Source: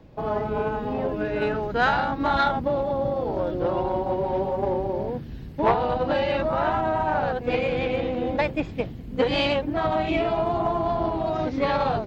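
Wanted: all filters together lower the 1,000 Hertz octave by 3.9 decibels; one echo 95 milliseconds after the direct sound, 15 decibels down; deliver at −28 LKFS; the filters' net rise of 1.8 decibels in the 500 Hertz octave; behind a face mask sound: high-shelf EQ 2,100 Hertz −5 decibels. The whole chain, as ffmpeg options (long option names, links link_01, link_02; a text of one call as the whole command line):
ffmpeg -i in.wav -af "equalizer=frequency=500:width_type=o:gain=4.5,equalizer=frequency=1000:width_type=o:gain=-6.5,highshelf=frequency=2100:gain=-5,aecho=1:1:95:0.178,volume=-3.5dB" out.wav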